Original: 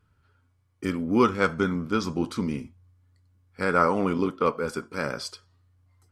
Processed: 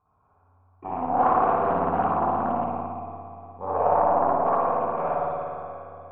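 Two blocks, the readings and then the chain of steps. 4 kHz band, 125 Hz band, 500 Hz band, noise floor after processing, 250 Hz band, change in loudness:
under -20 dB, -4.5 dB, +2.5 dB, -64 dBFS, -6.5 dB, +2.0 dB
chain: spectral repair 3.54–4.44, 920–3100 Hz before; in parallel at -11 dB: sine folder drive 18 dB, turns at -6.5 dBFS; on the sum: vocal tract filter a; echo with dull and thin repeats by turns 0.177 s, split 870 Hz, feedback 67%, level -6 dB; spring tank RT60 1.8 s, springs 55 ms, chirp 35 ms, DRR -7.5 dB; Doppler distortion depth 0.3 ms; gain +3.5 dB

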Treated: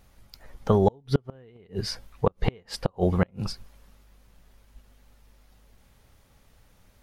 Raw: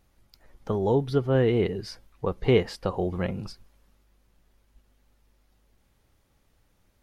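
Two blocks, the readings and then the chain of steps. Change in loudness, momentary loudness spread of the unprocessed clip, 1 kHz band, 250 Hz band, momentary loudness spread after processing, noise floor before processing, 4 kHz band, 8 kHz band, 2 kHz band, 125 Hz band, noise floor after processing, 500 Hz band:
-1.5 dB, 15 LU, +2.5 dB, -0.5 dB, 14 LU, -68 dBFS, +1.5 dB, n/a, -4.0 dB, 0.0 dB, -61 dBFS, -3.0 dB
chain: flipped gate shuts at -15 dBFS, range -36 dB; bell 330 Hz -6 dB 0.41 oct; gain +8 dB

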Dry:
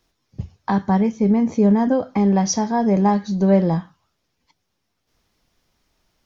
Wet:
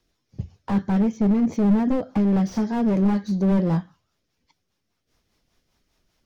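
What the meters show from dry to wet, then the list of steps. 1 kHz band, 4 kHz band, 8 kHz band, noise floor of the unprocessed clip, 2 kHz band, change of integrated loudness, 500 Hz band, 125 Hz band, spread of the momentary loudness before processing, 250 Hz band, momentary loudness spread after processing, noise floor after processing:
-9.5 dB, under -10 dB, n/a, -74 dBFS, -5.5 dB, -3.0 dB, -7.0 dB, -2.0 dB, 8 LU, -2.5 dB, 7 LU, -76 dBFS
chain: rotary speaker horn 5 Hz; slew limiter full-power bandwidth 39 Hz

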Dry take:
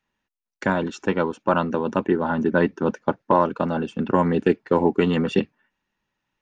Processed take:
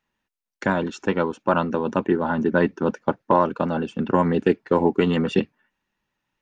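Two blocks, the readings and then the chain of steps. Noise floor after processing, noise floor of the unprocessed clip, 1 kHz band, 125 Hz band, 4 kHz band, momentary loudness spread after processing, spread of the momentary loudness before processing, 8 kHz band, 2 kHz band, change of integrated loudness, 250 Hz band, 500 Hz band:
-82 dBFS, -82 dBFS, 0.0 dB, 0.0 dB, +0.5 dB, 5 LU, 5 LU, n/a, 0.0 dB, 0.0 dB, 0.0 dB, 0.0 dB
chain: vibrato 7.4 Hz 30 cents

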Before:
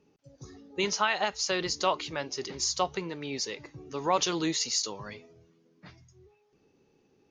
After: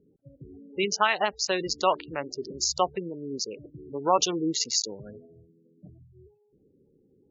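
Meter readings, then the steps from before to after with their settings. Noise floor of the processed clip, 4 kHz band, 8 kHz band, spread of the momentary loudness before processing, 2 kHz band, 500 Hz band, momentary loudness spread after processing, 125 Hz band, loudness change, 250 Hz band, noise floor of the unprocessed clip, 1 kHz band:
-65 dBFS, +1.0 dB, +2.0 dB, 14 LU, +1.5 dB, +3.5 dB, 14 LU, +0.5 dB, +2.5 dB, +2.5 dB, -68 dBFS, +3.5 dB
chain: Wiener smoothing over 41 samples; spectral gate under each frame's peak -20 dB strong; dynamic EQ 100 Hz, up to -7 dB, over -51 dBFS, Q 0.71; gain +5 dB

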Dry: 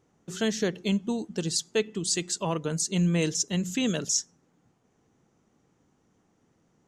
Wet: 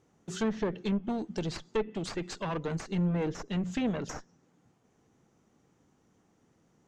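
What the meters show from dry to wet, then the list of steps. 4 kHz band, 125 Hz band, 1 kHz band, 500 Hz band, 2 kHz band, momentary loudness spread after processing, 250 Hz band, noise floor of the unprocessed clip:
-12.0 dB, -4.0 dB, -0.5 dB, -3.5 dB, -6.0 dB, 7 LU, -3.5 dB, -70 dBFS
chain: one-sided clip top -32 dBFS; treble ducked by the level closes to 1500 Hz, closed at -26 dBFS

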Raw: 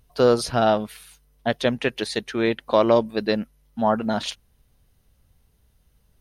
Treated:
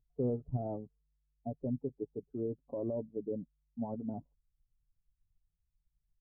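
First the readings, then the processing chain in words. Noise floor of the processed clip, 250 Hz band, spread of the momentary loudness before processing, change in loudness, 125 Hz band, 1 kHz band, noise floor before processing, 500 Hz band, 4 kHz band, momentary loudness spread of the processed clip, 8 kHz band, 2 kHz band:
-83 dBFS, -13.5 dB, 9 LU, -16.5 dB, -8.0 dB, -25.0 dB, -64 dBFS, -18.0 dB, under -40 dB, 10 LU, under -40 dB, under -40 dB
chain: per-bin expansion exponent 1.5; comb 7.1 ms, depth 59%; limiter -15.5 dBFS, peak gain reduction 10.5 dB; Gaussian blur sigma 16 samples; gain -5.5 dB

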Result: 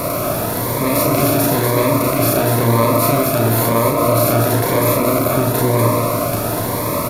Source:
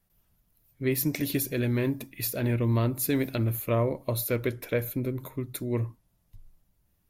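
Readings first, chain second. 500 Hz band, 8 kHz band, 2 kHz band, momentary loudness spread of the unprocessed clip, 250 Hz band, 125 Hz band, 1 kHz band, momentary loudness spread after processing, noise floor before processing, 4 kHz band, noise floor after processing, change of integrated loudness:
+15.5 dB, +16.0 dB, +14.0 dB, 6 LU, +12.0 dB, +11.5 dB, +24.0 dB, 5 LU, -71 dBFS, +15.5 dB, -20 dBFS, +13.5 dB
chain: per-bin compression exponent 0.2; band shelf 900 Hz +12.5 dB 1.3 oct; limiter -10.5 dBFS, peak gain reduction 8 dB; loudspeakers at several distances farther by 12 m -3 dB, 84 m -4 dB; cascading phaser rising 0.99 Hz; gain +4.5 dB

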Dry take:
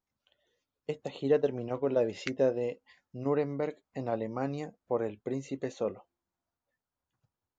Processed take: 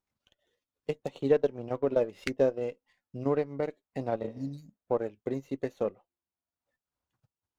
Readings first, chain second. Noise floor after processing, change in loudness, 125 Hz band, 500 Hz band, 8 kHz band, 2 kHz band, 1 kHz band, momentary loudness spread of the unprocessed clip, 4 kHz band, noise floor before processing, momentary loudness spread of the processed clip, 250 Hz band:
under -85 dBFS, +1.0 dB, 0.0 dB, +1.0 dB, n/a, +0.5 dB, 0.0 dB, 11 LU, -1.5 dB, under -85 dBFS, 11 LU, +0.5 dB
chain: spectral repair 4.26–4.8, 290–3800 Hz both; transient shaper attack +3 dB, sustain -10 dB; running maximum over 3 samples

